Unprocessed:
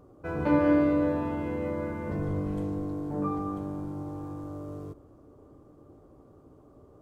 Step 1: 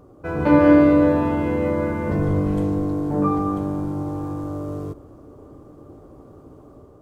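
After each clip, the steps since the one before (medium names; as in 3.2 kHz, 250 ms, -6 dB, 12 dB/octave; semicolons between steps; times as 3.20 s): level rider gain up to 4 dB; trim +6 dB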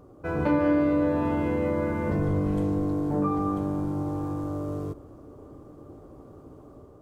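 compression 2.5:1, threshold -20 dBFS, peak gain reduction 8 dB; trim -2.5 dB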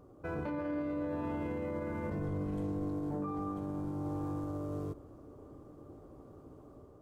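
peak limiter -23.5 dBFS, peak gain reduction 11 dB; trim -6 dB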